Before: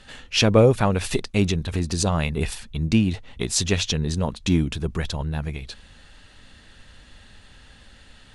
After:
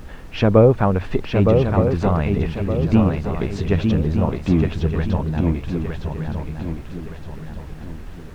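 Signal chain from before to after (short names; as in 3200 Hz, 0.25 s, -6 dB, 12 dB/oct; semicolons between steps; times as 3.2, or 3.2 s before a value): LPF 1500 Hz 12 dB/oct; on a send: swung echo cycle 1.218 s, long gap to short 3:1, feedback 38%, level -4.5 dB; on the sum: added noise brown -38 dBFS; gain +3 dB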